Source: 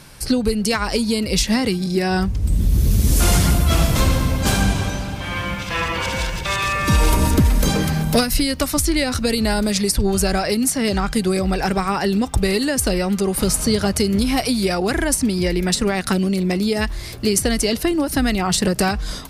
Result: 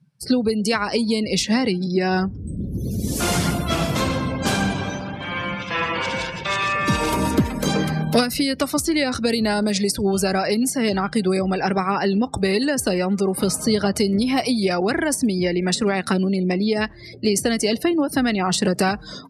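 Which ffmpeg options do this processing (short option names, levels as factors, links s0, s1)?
-filter_complex "[0:a]asettb=1/sr,asplit=3[s0][s1][s2];[s0]atrim=end=4.834[s3];[s1]atrim=start=4.83:end=7.51,asetpts=PTS-STARTPTS,afade=t=in:d=0.004:c=qsin,afade=t=out:st=2.676:d=0.004:c=qsin,acrusher=bits=4:mix=0:aa=0.5[s4];[s2]atrim=start=7.506[s5];[s3][s4]acrossfade=d=0.004:c1=hsin:c2=qsin[s6];[s6][s5]acrossfade=d=0.004:c1=qsin:c2=hsin,highpass=150,afftdn=nr=34:nf=-34,highshelf=f=8200:g=-8.5"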